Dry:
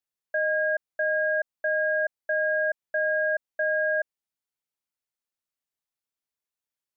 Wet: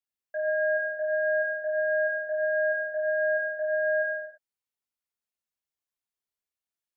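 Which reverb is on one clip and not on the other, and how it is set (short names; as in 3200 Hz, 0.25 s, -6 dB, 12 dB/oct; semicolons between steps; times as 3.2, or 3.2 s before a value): non-linear reverb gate 0.37 s falling, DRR -4 dB; gain -8.5 dB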